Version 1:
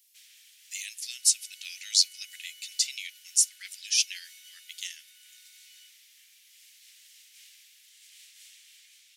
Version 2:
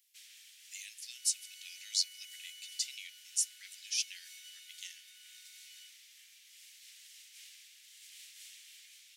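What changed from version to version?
speech -9.5 dB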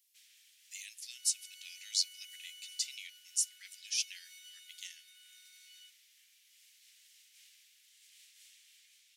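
first sound -7.5 dB

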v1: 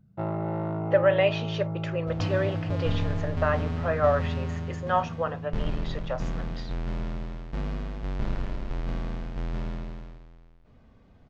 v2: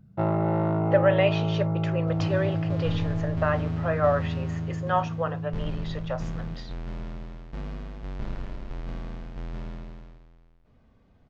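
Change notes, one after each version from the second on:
first sound +5.5 dB; second sound -4.0 dB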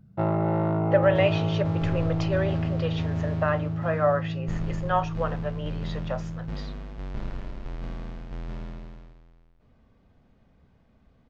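second sound: entry -1.05 s

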